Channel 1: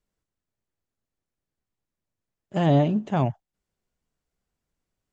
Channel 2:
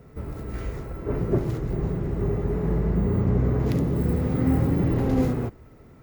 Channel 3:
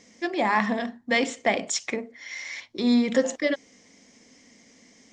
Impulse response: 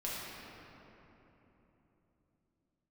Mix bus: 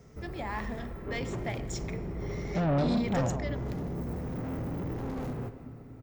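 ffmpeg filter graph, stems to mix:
-filter_complex "[0:a]lowpass=1.5k,volume=-2dB,asplit=3[a][b][c];[b]volume=-10.5dB[d];[1:a]asoftclip=type=tanh:threshold=-26dB,volume=-7dB,asplit=3[e][f][g];[f]volume=-13dB[h];[g]volume=-14dB[i];[2:a]volume=-6dB,asplit=2[j][k];[k]volume=-23.5dB[l];[c]apad=whole_len=225929[m];[j][m]sidechaingate=range=-8dB:threshold=-40dB:ratio=16:detection=peak[n];[3:a]atrim=start_sample=2205[o];[h][l]amix=inputs=2:normalize=0[p];[p][o]afir=irnorm=-1:irlink=0[q];[d][i]amix=inputs=2:normalize=0,aecho=0:1:150:1[r];[a][e][n][q][r]amix=inputs=5:normalize=0,asoftclip=type=tanh:threshold=-23dB"

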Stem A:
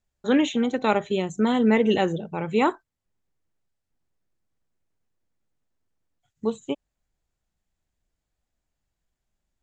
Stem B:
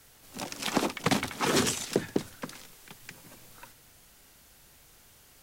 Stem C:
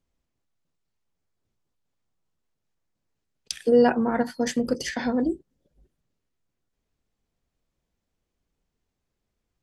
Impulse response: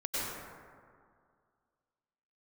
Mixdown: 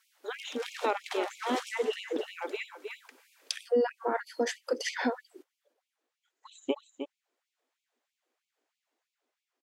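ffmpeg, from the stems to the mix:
-filter_complex "[0:a]dynaudnorm=f=160:g=9:m=10dB,volume=-7dB,asplit=2[a][b];[b]volume=-10.5dB[c];[1:a]volume=-8.5dB,asplit=3[d][e][f];[e]volume=-11dB[g];[f]volume=-17dB[h];[2:a]volume=2.5dB[i];[3:a]atrim=start_sample=2205[j];[g][j]afir=irnorm=-1:irlink=0[k];[c][h]amix=inputs=2:normalize=0,aecho=0:1:309:1[l];[a][d][i][k][l]amix=inputs=5:normalize=0,highshelf=f=4.9k:g=-9,acrossover=split=180[m][n];[n]acompressor=threshold=-23dB:ratio=5[o];[m][o]amix=inputs=2:normalize=0,afftfilt=real='re*gte(b*sr/1024,240*pow(2200/240,0.5+0.5*sin(2*PI*3.1*pts/sr)))':imag='im*gte(b*sr/1024,240*pow(2200/240,0.5+0.5*sin(2*PI*3.1*pts/sr)))':win_size=1024:overlap=0.75"

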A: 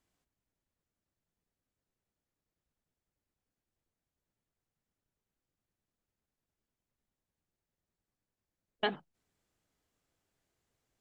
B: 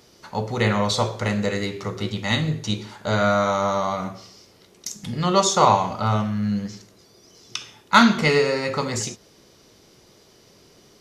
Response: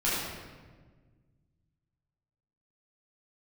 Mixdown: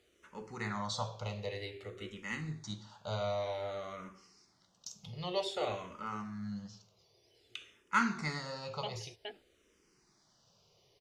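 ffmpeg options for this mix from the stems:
-filter_complex "[0:a]volume=-1dB,asplit=2[a][b];[b]volume=-11dB[c];[1:a]lowpass=9.8k,equalizer=f=240:w=2:g=-5.5,volume=-13dB,asplit=2[d][e];[e]apad=whole_len=485264[f];[a][f]sidechaincompress=threshold=-37dB:ratio=8:attack=16:release=1080[g];[c]aecho=0:1:418:1[h];[g][d][h]amix=inputs=3:normalize=0,equalizer=f=2.8k:w=3.1:g=3,asplit=2[i][j];[j]afreqshift=-0.53[k];[i][k]amix=inputs=2:normalize=1"

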